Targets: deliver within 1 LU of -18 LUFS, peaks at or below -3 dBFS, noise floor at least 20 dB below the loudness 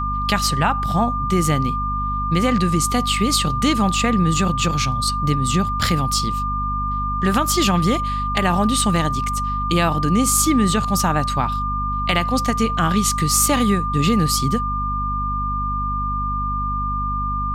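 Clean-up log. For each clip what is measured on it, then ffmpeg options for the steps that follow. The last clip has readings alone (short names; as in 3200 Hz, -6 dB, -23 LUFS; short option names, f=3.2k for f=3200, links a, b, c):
hum 50 Hz; harmonics up to 250 Hz; hum level -23 dBFS; steady tone 1200 Hz; tone level -22 dBFS; loudness -19.5 LUFS; peak -4.0 dBFS; loudness target -18.0 LUFS
-> -af "bandreject=f=50:t=h:w=4,bandreject=f=100:t=h:w=4,bandreject=f=150:t=h:w=4,bandreject=f=200:t=h:w=4,bandreject=f=250:t=h:w=4"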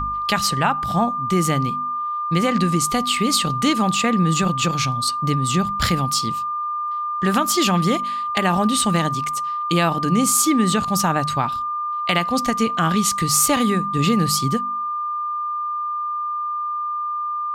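hum none; steady tone 1200 Hz; tone level -22 dBFS
-> -af "bandreject=f=1.2k:w=30"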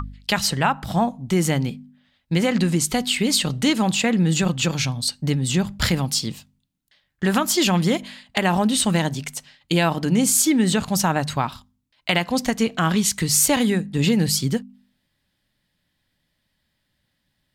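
steady tone none; loudness -21.0 LUFS; peak -4.5 dBFS; loudness target -18.0 LUFS
-> -af "volume=3dB,alimiter=limit=-3dB:level=0:latency=1"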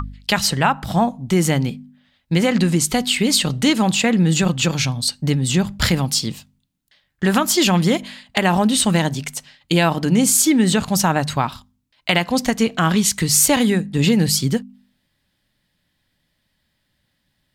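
loudness -18.0 LUFS; peak -3.0 dBFS; noise floor -71 dBFS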